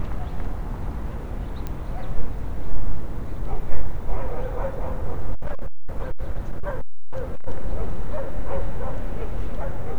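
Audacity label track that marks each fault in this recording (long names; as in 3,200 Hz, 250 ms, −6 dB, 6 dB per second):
1.670000	1.670000	click −17 dBFS
5.340000	7.480000	clipping −16 dBFS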